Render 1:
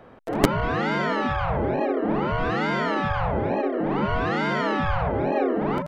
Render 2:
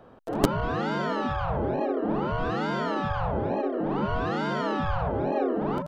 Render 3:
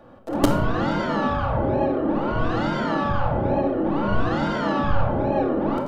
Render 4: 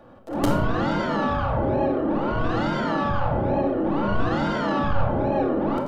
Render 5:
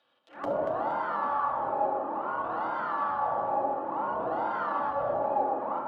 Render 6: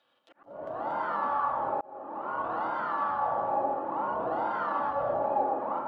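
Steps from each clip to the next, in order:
bell 2100 Hz -9.5 dB 0.5 oct; gain -3 dB
shoebox room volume 1900 m³, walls furnished, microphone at 2.4 m; gain +1.5 dB
transient shaper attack -6 dB, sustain -1 dB
auto-wah 600–3600 Hz, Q 3.2, down, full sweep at -16.5 dBFS; echo with dull and thin repeats by turns 0.117 s, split 1100 Hz, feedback 66%, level -3 dB
auto swell 0.603 s

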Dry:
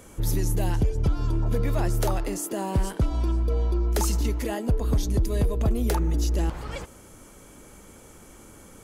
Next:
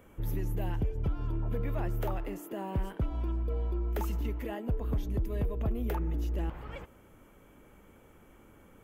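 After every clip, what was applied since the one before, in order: band shelf 6500 Hz -14.5 dB; gain -8 dB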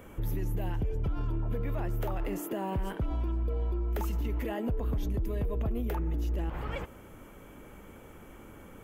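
limiter -32.5 dBFS, peak gain reduction 9 dB; gain +7.5 dB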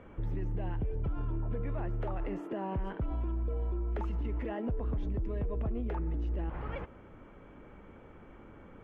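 LPF 2300 Hz 12 dB/oct; gain -2.5 dB

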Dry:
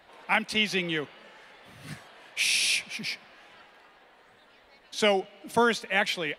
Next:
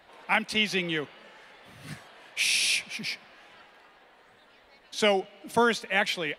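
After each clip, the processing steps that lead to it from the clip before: nothing audible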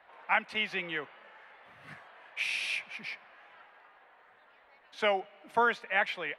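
three-band isolator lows -13 dB, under 590 Hz, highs -20 dB, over 2500 Hz

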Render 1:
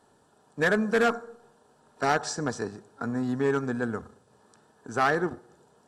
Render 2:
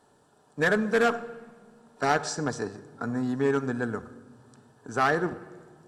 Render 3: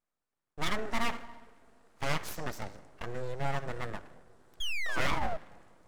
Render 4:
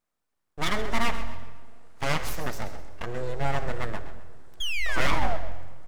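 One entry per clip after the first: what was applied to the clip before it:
shoebox room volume 2300 m³, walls mixed, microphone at 0.36 m
gate with hold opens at -48 dBFS; painted sound fall, 4.6–5.37, 310–1700 Hz -24 dBFS; full-wave rectifier; gain -5 dB
on a send: frequency-shifting echo 0.13 s, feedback 33%, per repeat -44 Hz, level -13 dB; on the sum: digital reverb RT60 1.4 s, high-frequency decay 0.95×, pre-delay 30 ms, DRR 16 dB; gain +5 dB

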